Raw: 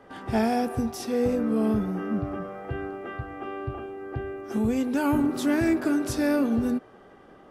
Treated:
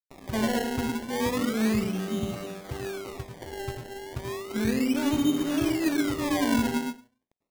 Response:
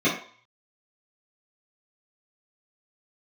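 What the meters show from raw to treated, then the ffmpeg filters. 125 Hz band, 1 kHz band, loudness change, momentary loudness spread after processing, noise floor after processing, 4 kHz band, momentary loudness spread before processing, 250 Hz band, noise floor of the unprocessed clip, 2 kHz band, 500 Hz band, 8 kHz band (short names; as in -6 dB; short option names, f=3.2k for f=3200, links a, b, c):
-1.5 dB, -2.0 dB, -1.0 dB, 12 LU, -82 dBFS, +7.0 dB, 12 LU, -1.5 dB, -52 dBFS, +1.0 dB, -3.0 dB, +4.0 dB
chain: -filter_complex "[0:a]acrossover=split=210|6700[a][b][c];[a]acontrast=22[d];[b]aeval=exprs='0.2*(cos(1*acos(clip(val(0)/0.2,-1,1)))-cos(1*PI/2))+0.0316*(cos(5*acos(clip(val(0)/0.2,-1,1)))-cos(5*PI/2))':c=same[e];[d][e][c]amix=inputs=3:normalize=0,aeval=exprs='sgn(val(0))*max(abs(val(0))-0.0141,0)':c=same,asplit=2[f][g];[1:a]atrim=start_sample=2205,adelay=89[h];[g][h]afir=irnorm=-1:irlink=0,volume=-22dB[i];[f][i]amix=inputs=2:normalize=0,acrusher=samples=25:mix=1:aa=0.000001:lfo=1:lforange=25:lforate=0.33,volume=-6.5dB"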